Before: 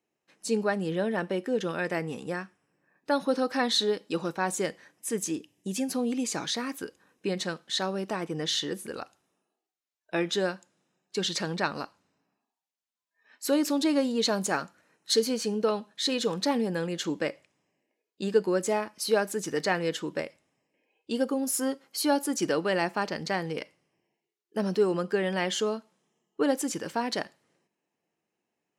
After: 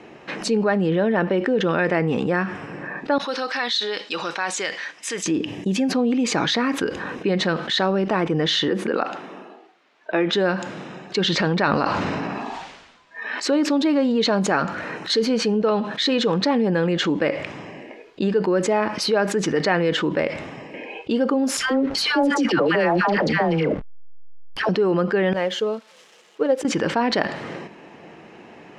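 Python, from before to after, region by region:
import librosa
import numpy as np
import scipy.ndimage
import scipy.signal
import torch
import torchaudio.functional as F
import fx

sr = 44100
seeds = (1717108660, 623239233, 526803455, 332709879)

y = fx.chain(x, sr, fx.lowpass(hz=6100.0, slope=12),
    fx.differentiator(), at=(3.18, 5.26))
y = fx.chain(y, sr, fx.highpass(hz=190.0, slope=24),
    fx.high_shelf(hz=5500.0, db=-11.5), at=(8.68, 10.33))
y = fx.chain(y, sr, fx.lowpass(hz=9000.0, slope=24),
    fx.sustainer(db_per_s=50.0), at=(11.23, 13.54))
y = fx.chain(y, sr, fx.dispersion(late='lows', ms=125.0, hz=1000.0),
    fx.transient(attack_db=2, sustain_db=9),
    fx.backlash(play_db=-44.5), at=(21.57, 24.69))
y = fx.chain(y, sr, fx.crossing_spikes(level_db=-30.0),
    fx.peak_eq(hz=510.0, db=12.5, octaves=0.32),
    fx.upward_expand(threshold_db=-42.0, expansion=2.5), at=(25.33, 26.65))
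y = scipy.signal.sosfilt(scipy.signal.butter(2, 2800.0, 'lowpass', fs=sr, output='sos'), y)
y = fx.env_flatten(y, sr, amount_pct=70)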